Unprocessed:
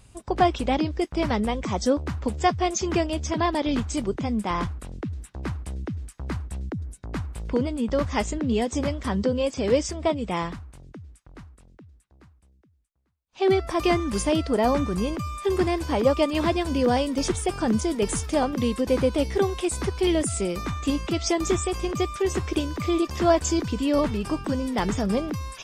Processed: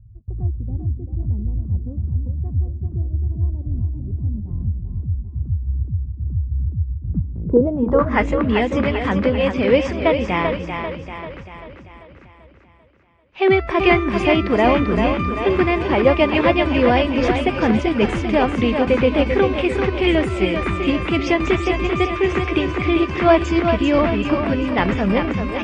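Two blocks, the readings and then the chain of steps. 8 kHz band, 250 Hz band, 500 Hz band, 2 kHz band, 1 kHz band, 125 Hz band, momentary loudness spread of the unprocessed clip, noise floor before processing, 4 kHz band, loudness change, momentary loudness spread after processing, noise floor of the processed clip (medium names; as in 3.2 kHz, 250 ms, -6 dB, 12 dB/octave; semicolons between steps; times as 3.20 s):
under -10 dB, +5.5 dB, +6.0 dB, +11.0 dB, +5.0 dB, +8.5 dB, 11 LU, -59 dBFS, +4.0 dB, +6.0 dB, 10 LU, -45 dBFS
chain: low-pass sweep 100 Hz -> 2.4 kHz, 6.93–8.30 s; two-band feedback delay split 330 Hz, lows 292 ms, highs 391 ms, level -6 dB; trim +5 dB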